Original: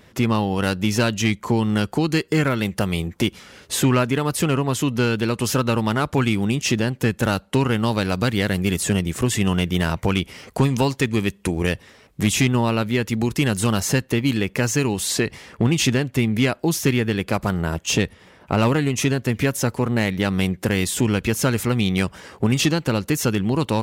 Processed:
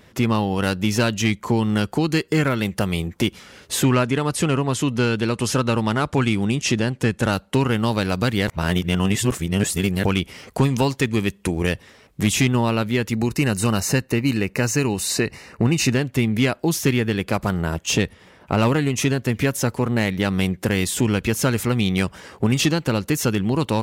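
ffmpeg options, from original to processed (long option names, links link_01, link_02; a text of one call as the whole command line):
ffmpeg -i in.wav -filter_complex "[0:a]asettb=1/sr,asplit=3[link_01][link_02][link_03];[link_01]atrim=end=3.914[link_04];[link_02]atrim=start=3.91:end=7.33,asetpts=PTS-STARTPTS,afade=type=in:duration=0.004:curve=qsin,afade=type=out:start_time=3.416:duration=0.004:curve=qsin,lowpass=frequency=11000:width=0.5412,lowpass=frequency=11000:width=1.3066[link_05];[link_03]atrim=start=7.326[link_06];[link_04][link_05]acrossfade=duration=0.004:curve1=hsin:curve2=qsin[link_07];[link_07][link_06]acrossfade=duration=0.004:curve1=qsin:curve2=hsin,asettb=1/sr,asplit=3[link_08][link_09][link_10];[link_08]atrim=end=13.124[link_11];[link_09]atrim=start=13.12:end=15.95,asetpts=PTS-STARTPTS,afade=type=in:duration=0.004:curve=qsin,afade=type=out:start_time=2.826:duration=0.004:curve=qsin,asuperstop=centerf=3300:order=8:qfactor=6.2[link_12];[link_10]atrim=start=15.946[link_13];[link_11][link_12]acrossfade=duration=0.004:curve1=hsin:curve2=qsin[link_14];[link_14][link_13]acrossfade=duration=0.004:curve1=qsin:curve2=hsin,asplit=3[link_15][link_16][link_17];[link_15]atrim=end=8.482[link_18];[link_16]atrim=start=8.478:end=10.052,asetpts=PTS-STARTPTS,areverse[link_19];[link_17]atrim=start=10.048[link_20];[link_18][link_19]acrossfade=duration=0.004:curve1=hsin:curve2=hsin[link_21];[link_21][link_20]acrossfade=duration=0.004:curve1=hsin:curve2=hsin" out.wav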